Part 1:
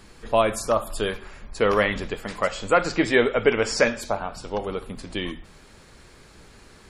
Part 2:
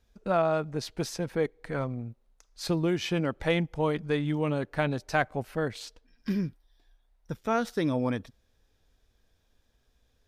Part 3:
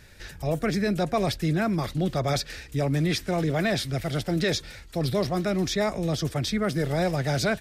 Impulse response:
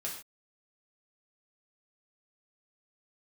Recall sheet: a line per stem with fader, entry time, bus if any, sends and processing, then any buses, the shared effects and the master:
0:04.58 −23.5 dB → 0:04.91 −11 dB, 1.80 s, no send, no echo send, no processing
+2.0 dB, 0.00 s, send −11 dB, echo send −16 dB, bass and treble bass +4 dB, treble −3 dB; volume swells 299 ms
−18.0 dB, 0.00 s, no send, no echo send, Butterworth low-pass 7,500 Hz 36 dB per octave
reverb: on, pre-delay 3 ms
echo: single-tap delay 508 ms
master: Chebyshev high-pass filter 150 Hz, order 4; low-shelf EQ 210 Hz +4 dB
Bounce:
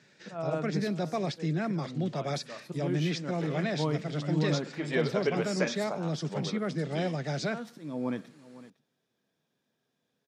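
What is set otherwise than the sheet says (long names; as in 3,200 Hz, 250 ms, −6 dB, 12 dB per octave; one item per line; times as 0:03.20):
stem 2 +2.0 dB → −6.0 dB
stem 3 −18.0 dB → −7.0 dB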